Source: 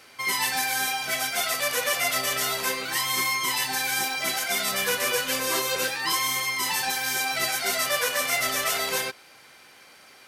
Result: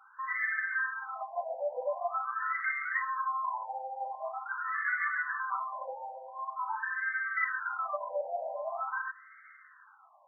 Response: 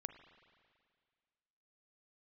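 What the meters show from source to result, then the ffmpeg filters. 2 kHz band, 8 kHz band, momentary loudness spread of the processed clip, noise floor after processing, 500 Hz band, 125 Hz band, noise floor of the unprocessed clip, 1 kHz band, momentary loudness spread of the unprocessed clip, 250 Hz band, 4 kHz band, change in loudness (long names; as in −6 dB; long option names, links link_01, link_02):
−6.0 dB, below −40 dB, 9 LU, −58 dBFS, −6.0 dB, below −40 dB, −52 dBFS, −4.0 dB, 2 LU, below −40 dB, below −40 dB, −9.5 dB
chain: -filter_complex "[0:a]asplit=2[link_01][link_02];[link_02]asuperstop=centerf=840:order=12:qfactor=7.9[link_03];[1:a]atrim=start_sample=2205[link_04];[link_03][link_04]afir=irnorm=-1:irlink=0,volume=-4.5dB[link_05];[link_01][link_05]amix=inputs=2:normalize=0,afftfilt=real='re*between(b*sr/1024,670*pow(1600/670,0.5+0.5*sin(2*PI*0.45*pts/sr))/1.41,670*pow(1600/670,0.5+0.5*sin(2*PI*0.45*pts/sr))*1.41)':imag='im*between(b*sr/1024,670*pow(1600/670,0.5+0.5*sin(2*PI*0.45*pts/sr))/1.41,670*pow(1600/670,0.5+0.5*sin(2*PI*0.45*pts/sr))*1.41)':win_size=1024:overlap=0.75,volume=-2dB"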